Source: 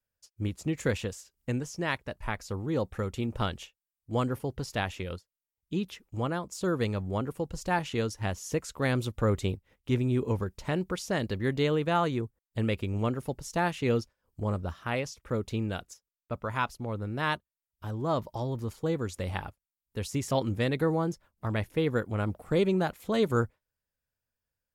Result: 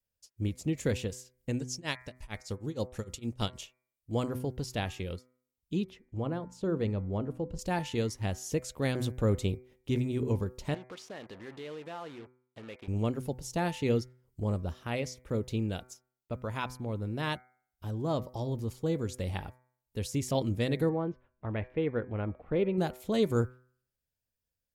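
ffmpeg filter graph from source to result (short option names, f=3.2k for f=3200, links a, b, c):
-filter_complex "[0:a]asettb=1/sr,asplit=3[a][b][c];[a]atrim=end=1.594[d];[b]atrim=start=1.59:end=3.61,asetpts=PTS-STARTPTS,afade=t=in:d=0.004:c=qsin,afade=t=out:st=2.016:d=0.004:c=qsin,equalizer=f=6.5k:w=0.57:g=9.5,tremolo=f=6.5:d=0.96[e];[c]atrim=start=3.606[f];[d][e]acrossfade=d=0.004:c1=hsin:c2=qsin[g];[g][f]acrossfade=d=0.004:c1=qsin:c2=hsin,asettb=1/sr,asplit=3[h][i][j];[h]atrim=end=5.844[k];[i]atrim=start=5.84:end=7.59,asetpts=PTS-STARTPTS,afade=t=in:d=0.004:c=qsin,afade=t=out:st=1.746:d=0.004:c=qsin,lowpass=f=1.4k:p=1,bandreject=f=60:t=h:w=6,bandreject=f=120:t=h:w=6,bandreject=f=180:t=h:w=6,bandreject=f=240:t=h:w=6,bandreject=f=300:t=h:w=6[l];[j]atrim=start=7.586[m];[k][l]acrossfade=d=0.004:c1=hsin:c2=qsin[n];[n][m]acrossfade=d=0.004:c1=qsin:c2=hsin,asettb=1/sr,asplit=3[o][p][q];[o]atrim=end=10.744[r];[p]atrim=start=10.74:end=12.88,asetpts=PTS-STARTPTS,afade=t=in:d=0.004:c=qsin,afade=t=out:st=2.136:d=0.004:c=qsin,acompressor=threshold=-31dB:ratio=5:attack=3.2:release=140:knee=1:detection=peak,acrusher=bits=6:mix=0:aa=0.5,bandpass=f=1.2k:t=q:w=0.66[s];[q]atrim=start=12.876[t];[r][s]acrossfade=d=0.004:c1=hsin:c2=qsin[u];[u][t]acrossfade=d=0.004:c1=qsin:c2=hsin,asettb=1/sr,asplit=3[v][w][x];[v]atrim=end=20.894[y];[w]atrim=start=20.89:end=22.78,asetpts=PTS-STARTPTS,afade=t=in:d=0.004:c=qsin,afade=t=out:st=1.886:d=0.004:c=qsin,lowpass=f=2.6k:w=0.5412,lowpass=f=2.6k:w=1.3066,equalizer=f=150:t=o:w=1.8:g=-5[z];[x]atrim=start=22.776[aa];[y][z]acrossfade=d=0.004:c1=hsin:c2=qsin[ab];[ab][aa]acrossfade=d=0.004:c1=qsin:c2=hsin,equalizer=f=1.3k:w=0.95:g=-8,bandreject=f=126.2:t=h:w=4,bandreject=f=252.4:t=h:w=4,bandreject=f=378.6:t=h:w=4,bandreject=f=504.8:t=h:w=4,bandreject=f=631:t=h:w=4,bandreject=f=757.2:t=h:w=4,bandreject=f=883.4:t=h:w=4,bandreject=f=1.0096k:t=h:w=4,bandreject=f=1.1358k:t=h:w=4,bandreject=f=1.262k:t=h:w=4,bandreject=f=1.3882k:t=h:w=4,bandreject=f=1.5144k:t=h:w=4,bandreject=f=1.6406k:t=h:w=4,bandreject=f=1.7668k:t=h:w=4,bandreject=f=1.893k:t=h:w=4,bandreject=f=2.0192k:t=h:w=4,bandreject=f=2.1454k:t=h:w=4,bandreject=f=2.2716k:t=h:w=4,bandreject=f=2.3978k:t=h:w=4"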